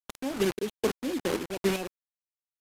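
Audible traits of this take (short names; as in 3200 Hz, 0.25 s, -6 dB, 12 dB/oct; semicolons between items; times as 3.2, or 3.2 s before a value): phasing stages 2, 3.9 Hz, lowest notch 750–1600 Hz; a quantiser's noise floor 6-bit, dither none; chopped level 2.5 Hz, depth 60%, duty 40%; AAC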